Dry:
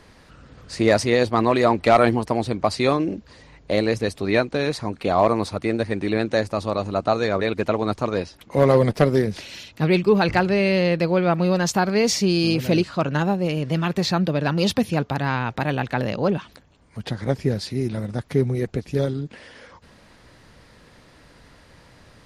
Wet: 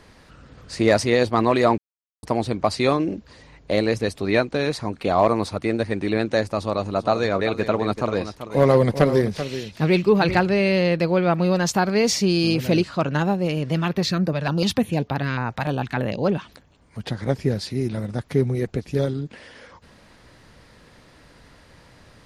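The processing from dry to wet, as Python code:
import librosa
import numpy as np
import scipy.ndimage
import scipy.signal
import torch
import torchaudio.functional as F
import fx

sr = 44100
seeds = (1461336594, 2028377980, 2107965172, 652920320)

y = fx.echo_single(x, sr, ms=387, db=-11.0, at=(6.58, 10.44))
y = fx.filter_held_notch(y, sr, hz=6.7, low_hz=340.0, high_hz=7900.0, at=(13.87, 16.24), fade=0.02)
y = fx.edit(y, sr, fx.silence(start_s=1.78, length_s=0.45), tone=tone)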